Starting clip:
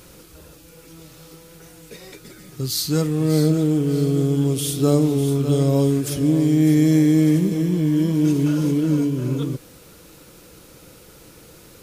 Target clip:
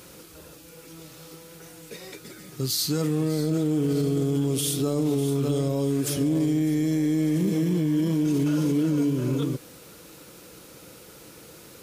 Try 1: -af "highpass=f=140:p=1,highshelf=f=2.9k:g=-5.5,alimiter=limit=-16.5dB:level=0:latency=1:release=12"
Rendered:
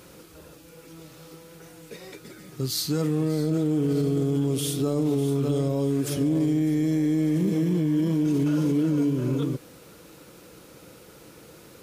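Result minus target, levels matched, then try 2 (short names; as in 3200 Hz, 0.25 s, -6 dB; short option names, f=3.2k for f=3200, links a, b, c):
8000 Hz band -4.0 dB
-af "highpass=f=140:p=1,alimiter=limit=-16.5dB:level=0:latency=1:release=12"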